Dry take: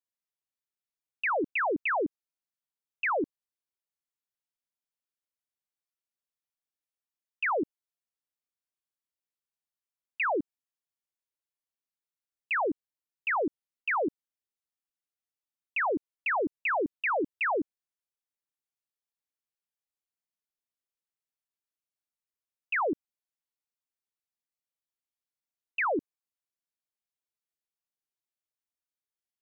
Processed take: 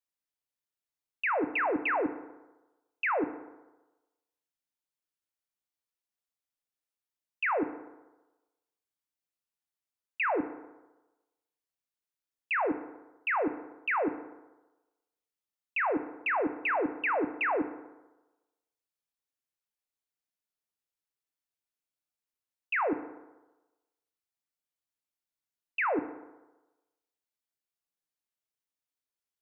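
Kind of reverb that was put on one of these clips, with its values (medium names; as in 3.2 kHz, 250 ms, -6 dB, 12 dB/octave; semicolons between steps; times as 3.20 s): FDN reverb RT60 1.1 s, low-frequency decay 0.85×, high-frequency decay 0.5×, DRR 9.5 dB; trim -1 dB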